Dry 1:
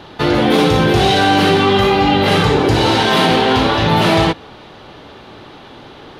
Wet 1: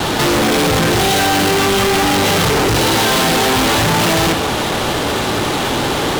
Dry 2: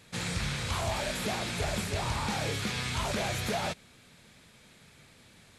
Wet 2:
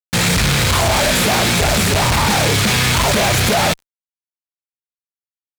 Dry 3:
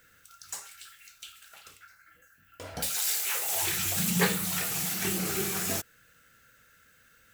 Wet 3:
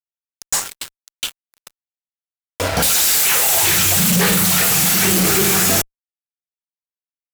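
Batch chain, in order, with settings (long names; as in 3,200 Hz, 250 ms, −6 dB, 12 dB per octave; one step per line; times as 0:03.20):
downward expander −45 dBFS
leveller curve on the samples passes 1
fuzz pedal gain 39 dB, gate −44 dBFS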